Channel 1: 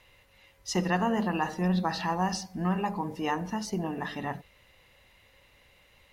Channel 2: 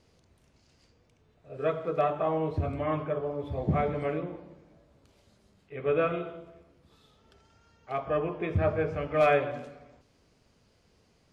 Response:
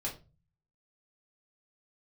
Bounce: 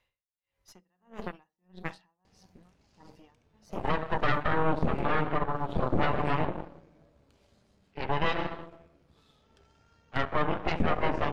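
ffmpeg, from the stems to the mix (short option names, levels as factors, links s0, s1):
-filter_complex "[0:a]aeval=exprs='val(0)*pow(10,-37*(0.5-0.5*cos(2*PI*1.6*n/s))/20)':c=same,volume=0.355[s0];[1:a]acompressor=threshold=0.0178:ratio=2,adelay=2250,volume=1.33,asplit=2[s1][s2];[s2]volume=0.211[s3];[2:a]atrim=start_sample=2205[s4];[s3][s4]afir=irnorm=-1:irlink=0[s5];[s0][s1][s5]amix=inputs=3:normalize=0,highshelf=f=8400:g=-5,aeval=exprs='0.282*(cos(1*acos(clip(val(0)/0.282,-1,1)))-cos(1*PI/2))+0.02*(cos(7*acos(clip(val(0)/0.282,-1,1)))-cos(7*PI/2))+0.126*(cos(8*acos(clip(val(0)/0.282,-1,1)))-cos(8*PI/2))':c=same,alimiter=limit=0.188:level=0:latency=1:release=19"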